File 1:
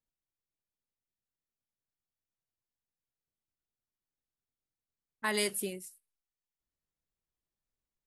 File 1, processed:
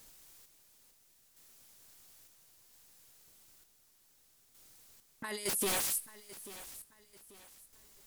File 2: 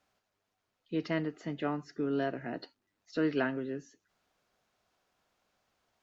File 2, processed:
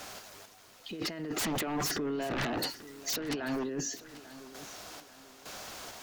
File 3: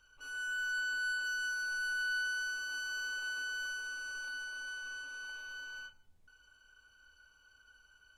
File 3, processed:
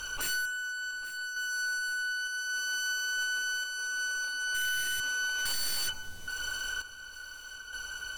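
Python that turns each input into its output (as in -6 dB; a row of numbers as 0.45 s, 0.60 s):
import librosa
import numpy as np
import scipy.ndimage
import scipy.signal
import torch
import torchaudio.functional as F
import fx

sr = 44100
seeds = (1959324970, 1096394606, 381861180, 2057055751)

p1 = fx.bass_treble(x, sr, bass_db=-4, treble_db=7)
p2 = fx.over_compress(p1, sr, threshold_db=-46.0, ratio=-1.0)
p3 = fx.tremolo_random(p2, sr, seeds[0], hz=2.2, depth_pct=75)
p4 = fx.fold_sine(p3, sr, drive_db=18, ceiling_db=-28.5)
y = p4 + fx.echo_feedback(p4, sr, ms=839, feedback_pct=36, wet_db=-16.5, dry=0)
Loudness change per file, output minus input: -2.0 LU, 0.0 LU, +5.0 LU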